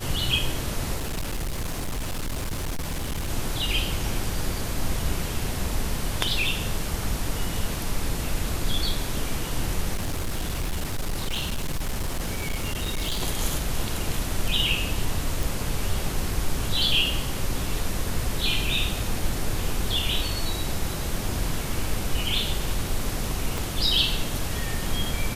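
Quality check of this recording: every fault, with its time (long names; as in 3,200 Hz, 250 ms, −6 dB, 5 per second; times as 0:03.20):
0:00.96–0:03.29: clipping −25 dBFS
0:09.94–0:13.22: clipping −23 dBFS
0:15.43: click
0:23.58: click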